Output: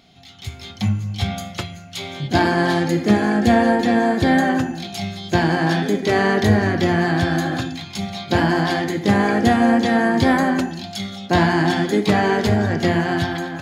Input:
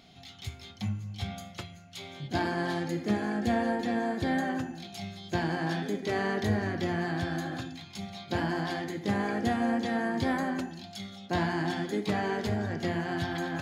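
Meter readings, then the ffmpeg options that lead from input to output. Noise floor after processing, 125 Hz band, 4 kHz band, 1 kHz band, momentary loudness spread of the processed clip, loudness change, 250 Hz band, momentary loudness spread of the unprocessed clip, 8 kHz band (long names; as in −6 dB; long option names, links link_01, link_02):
−38 dBFS, +12.5 dB, +12.5 dB, +13.0 dB, 12 LU, +13.0 dB, +13.0 dB, 13 LU, +12.5 dB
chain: -af "dynaudnorm=framelen=220:gausssize=5:maxgain=10dB,volume=3dB"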